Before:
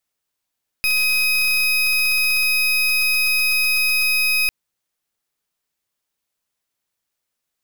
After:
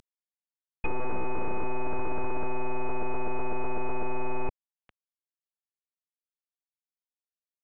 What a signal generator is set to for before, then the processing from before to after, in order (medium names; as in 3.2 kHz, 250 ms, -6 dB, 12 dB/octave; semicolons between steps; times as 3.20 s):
pulse 2.52 kHz, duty 33% -18 dBFS 3.65 s
CVSD coder 16 kbps; low-pass that closes with the level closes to 990 Hz, closed at -22.5 dBFS; reverse; upward compressor, threshold -37 dBFS; reverse